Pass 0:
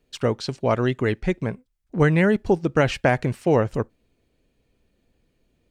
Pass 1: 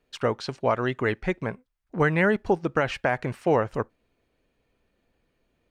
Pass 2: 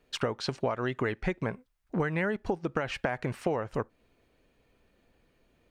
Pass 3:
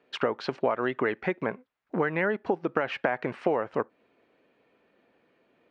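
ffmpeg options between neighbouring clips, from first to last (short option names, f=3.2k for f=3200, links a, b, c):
-af "equalizer=f=1.2k:w=0.49:g=9.5,bandreject=f=7.6k:w=23,alimiter=limit=-4dB:level=0:latency=1:release=229,volume=-6.5dB"
-af "acompressor=threshold=-30dB:ratio=12,volume=4dB"
-af "highpass=250,lowpass=2.7k,volume=4.5dB"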